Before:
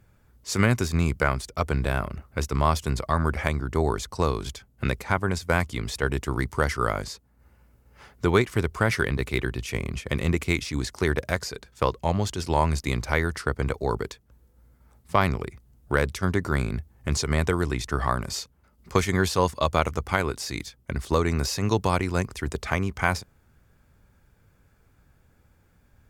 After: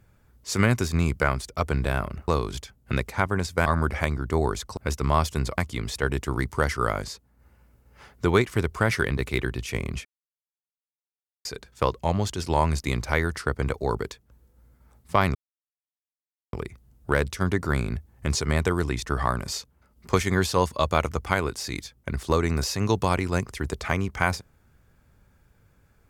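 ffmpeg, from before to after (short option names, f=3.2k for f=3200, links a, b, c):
-filter_complex "[0:a]asplit=8[a][b][c][d][e][f][g][h];[a]atrim=end=2.282[i];[b]atrim=start=4.198:end=5.582[j];[c]atrim=start=3.088:end=4.202[k];[d]atrim=start=2.278:end=3.092[l];[e]atrim=start=5.578:end=10.05,asetpts=PTS-STARTPTS,afade=t=out:st=4.468:d=0.004:c=hsin[m];[f]atrim=start=10.05:end=11.45,asetpts=PTS-STARTPTS,volume=0[n];[g]atrim=start=11.45:end=15.35,asetpts=PTS-STARTPTS,afade=t=in:d=0.004:c=hsin,afade=t=out:st=3.896:d=0.004:c=hsin,apad=pad_dur=1.18[o];[h]atrim=start=15.35,asetpts=PTS-STARTPTS,afade=t=in:d=0.004:c=hsin[p];[i][j]acrossfade=d=0.004:c1=hsin:c2=hsin[q];[q][k]acrossfade=d=0.004:c1=hsin:c2=hsin[r];[r][l]acrossfade=d=0.004:c1=hsin:c2=hsin[s];[m][n][o][p]concat=n=4:v=0:a=1[t];[s][t]acrossfade=d=0.004:c1=hsin:c2=hsin"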